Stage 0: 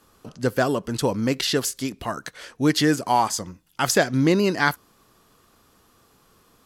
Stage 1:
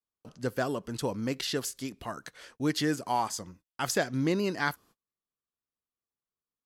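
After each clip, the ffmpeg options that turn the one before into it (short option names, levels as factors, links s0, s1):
-af "agate=range=0.0224:threshold=0.00501:ratio=16:detection=peak,volume=0.355"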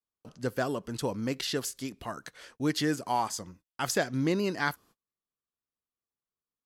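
-af anull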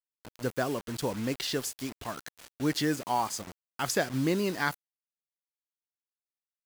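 -af "acrusher=bits=6:mix=0:aa=0.000001"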